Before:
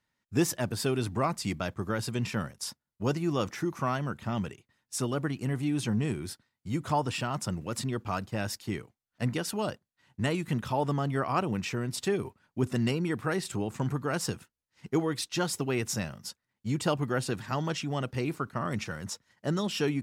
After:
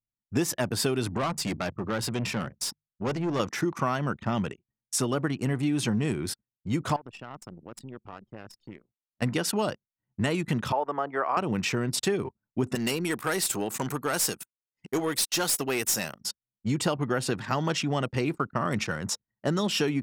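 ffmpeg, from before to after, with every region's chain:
-filter_complex "[0:a]asettb=1/sr,asplit=3[a][b][c];[a]atrim=end=1.174[d];[b]atrim=start=1.17:end=3.4,asetpts=PTS-STARTPTS,afade=t=in:d=0.004:c=qsin,afade=t=out:st=2.226:d=0.004:c=qsin,aeval=exprs='(tanh(31.6*val(0)+0.3)-tanh(0.3))/31.6':c=same,bandreject=f=50:t=h:w=6,bandreject=f=100:t=h:w=6,bandreject=f=150:t=h:w=6[e];[c]atrim=start=3.396[f];[d][e]acrossfade=d=0.004:c1=hsin:c2=qsin[g];[g][f]acrossfade=d=0.004:c1=qsin:c2=hsin,asettb=1/sr,asplit=3[h][i][j];[h]atrim=end=6.964[k];[i]atrim=start=6.96:end=9.22,asetpts=PTS-STARTPTS,afade=t=in:d=0.004:c=qsin,afade=t=out:st=2.256:d=0.004:c=qsin,lowshelf=f=150:g=-5,acompressor=threshold=-45dB:ratio=2.5:attack=3.2:release=140:knee=1:detection=peak,aeval=exprs='(tanh(79.4*val(0)+0.75)-tanh(0.75))/79.4':c=same[l];[j]atrim=start=9.216[m];[k][l]acrossfade=d=0.004:c1=hsin:c2=qsin[n];[n][m]acrossfade=d=0.004:c1=qsin:c2=hsin,asettb=1/sr,asplit=3[o][p][q];[o]atrim=end=10.724[r];[p]atrim=start=10.72:end=11.37,asetpts=PTS-STARTPTS,afade=t=in:d=0.004:c=qsin,afade=t=out:st=0.646:d=0.004:c=qsin,highpass=42,acrossover=split=390 2200:gain=0.0631 1 0.126[s][t][u];[s][t][u]amix=inputs=3:normalize=0[v];[q]atrim=start=11.366[w];[r][v]acrossfade=d=0.004:c1=hsin:c2=qsin[x];[x][w]acrossfade=d=0.004:c1=qsin:c2=hsin,asettb=1/sr,asplit=3[y][z][aa];[y]atrim=end=12.754[ab];[z]atrim=start=12.75:end=16.21,asetpts=PTS-STARTPTS,afade=t=in:d=0.004:c=qsin,afade=t=out:st=3.456:d=0.004:c=qsin,aemphasis=mode=production:type=bsi,aeval=exprs='(tanh(20*val(0)+0.3)-tanh(0.3))/20':c=same[ac];[aa]atrim=start=16.206[ad];[ab][ac]acrossfade=d=0.004:c1=hsin:c2=qsin[ae];[ae][ad]acrossfade=d=0.004:c1=qsin:c2=hsin,anlmdn=0.0398,lowshelf=f=78:g=-11.5,acompressor=threshold=-30dB:ratio=6,volume=7.5dB"

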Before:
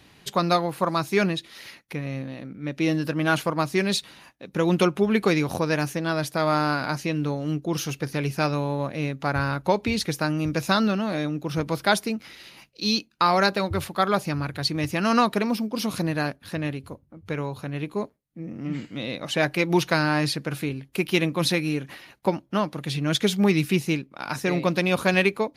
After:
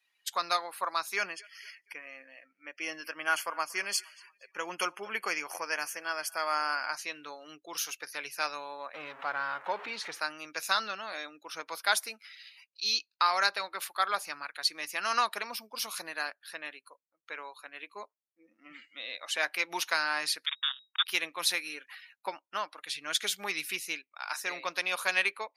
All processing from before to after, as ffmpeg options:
-filter_complex "[0:a]asettb=1/sr,asplit=3[a][b][c];[a]atrim=end=1.164[d];[b]atrim=start=1.16:end=6.93,asetpts=PTS-STARTPTS,afade=t=in:d=0.004:c=qsin,afade=t=out:st=5.766:d=0.004:c=qsin,asuperstop=centerf=3800:order=20:qfactor=4.4,aecho=1:1:233|466|699|932:0.075|0.0435|0.0252|0.0146,atrim=end_sample=254457[e];[c]atrim=start=6.926[f];[d][e]acrossfade=d=0.004:c1=hsin:c2=qsin[g];[g][f]acrossfade=d=0.004:c1=qsin:c2=hsin,asettb=1/sr,asplit=3[h][i][j];[h]atrim=end=8.944[k];[i]atrim=start=8.94:end=10.19,asetpts=PTS-STARTPTS,afade=t=in:d=0.004:c=qsin,afade=t=out:st=1.246:d=0.004:c=qsin,aeval=exprs='val(0)+0.5*0.0596*sgn(val(0))':c=same,lowpass=f=1.3k:p=1[l];[j]atrim=start=10.186[m];[k][l]acrossfade=d=0.004:c1=hsin:c2=qsin[n];[n][m]acrossfade=d=0.004:c1=qsin:c2=hsin,asettb=1/sr,asplit=3[o][p][q];[o]atrim=end=20.464[r];[p]atrim=start=20.46:end=21.06,asetpts=PTS-STARTPTS,afade=t=in:d=0.004:c=qsin,afade=t=out:st=0.596:d=0.004:c=qsin,acrusher=bits=3:mix=0:aa=0.5,lowpass=f=3.2k:t=q:w=0.5098,lowpass=f=3.2k:t=q:w=0.6013,lowpass=f=3.2k:t=q:w=0.9,lowpass=f=3.2k:t=q:w=2.563,afreqshift=-3800[s];[q]atrim=start=21.056[t];[r][s]acrossfade=d=0.004:c1=hsin:c2=qsin[u];[u][t]acrossfade=d=0.004:c1=qsin:c2=hsin,highpass=1.4k,afftdn=nr=21:nf=-50,equalizer=f=3k:w=0.65:g=-6,volume=2dB"

